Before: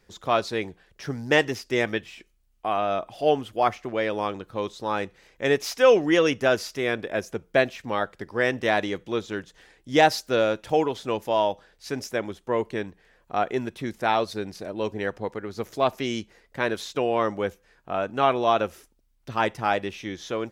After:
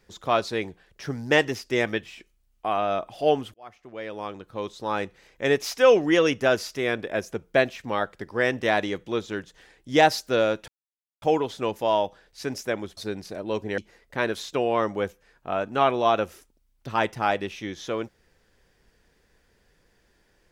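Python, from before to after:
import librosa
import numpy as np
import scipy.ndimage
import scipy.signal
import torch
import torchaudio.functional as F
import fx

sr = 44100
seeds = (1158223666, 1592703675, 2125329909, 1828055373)

y = fx.edit(x, sr, fx.fade_in_span(start_s=3.54, length_s=1.46),
    fx.insert_silence(at_s=10.68, length_s=0.54),
    fx.cut(start_s=12.43, length_s=1.84),
    fx.cut(start_s=15.08, length_s=1.12), tone=tone)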